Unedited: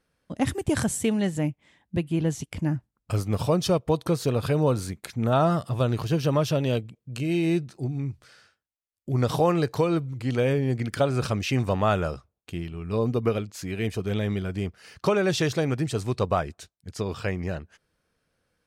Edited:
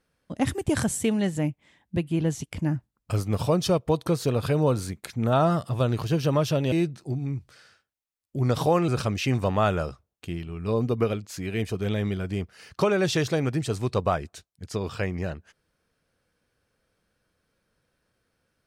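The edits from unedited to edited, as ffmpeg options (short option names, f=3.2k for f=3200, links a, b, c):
-filter_complex "[0:a]asplit=3[a][b][c];[a]atrim=end=6.722[d];[b]atrim=start=7.448:end=9.612[e];[c]atrim=start=11.128[f];[d][e]acrossfade=d=0.004:c1=hsin:c2=hsin[g];[g][f]acrossfade=d=0.004:c1=hsin:c2=hsin"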